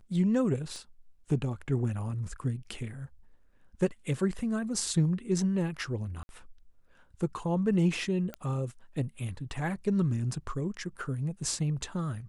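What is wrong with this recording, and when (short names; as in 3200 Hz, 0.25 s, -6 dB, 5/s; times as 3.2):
0.76 pop -32 dBFS
6.23–6.29 gap 61 ms
8.34 pop -23 dBFS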